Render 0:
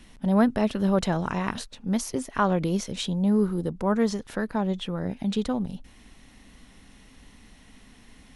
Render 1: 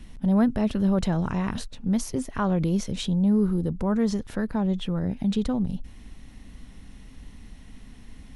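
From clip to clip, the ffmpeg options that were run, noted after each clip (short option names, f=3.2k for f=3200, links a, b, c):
-filter_complex "[0:a]lowshelf=f=220:g=12,asplit=2[a][b];[b]alimiter=limit=-18.5dB:level=0:latency=1:release=31,volume=1.5dB[c];[a][c]amix=inputs=2:normalize=0,volume=-8.5dB"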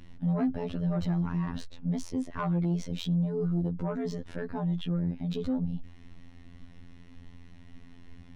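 -af "afftfilt=real='hypot(re,im)*cos(PI*b)':imag='0':win_size=2048:overlap=0.75,adynamicsmooth=sensitivity=1.5:basefreq=5.2k,asoftclip=type=tanh:threshold=-20.5dB"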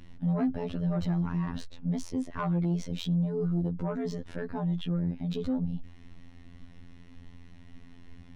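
-af anull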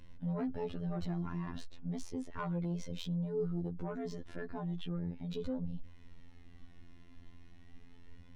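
-af "flanger=delay=1.9:depth=1:regen=49:speed=0.35:shape=sinusoidal,volume=-2dB"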